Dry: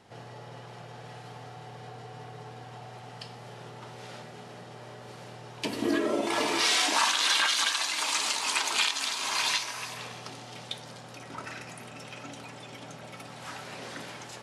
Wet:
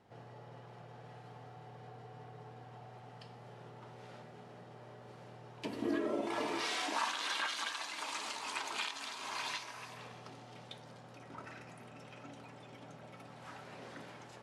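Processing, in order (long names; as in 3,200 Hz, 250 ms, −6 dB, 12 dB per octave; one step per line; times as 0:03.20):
high-shelf EQ 2,600 Hz −10.5 dB
level −7 dB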